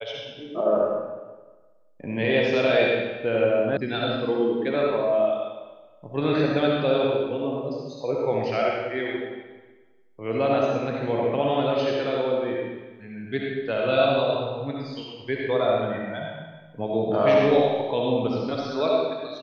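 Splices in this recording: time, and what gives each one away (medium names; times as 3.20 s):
3.77 s: sound stops dead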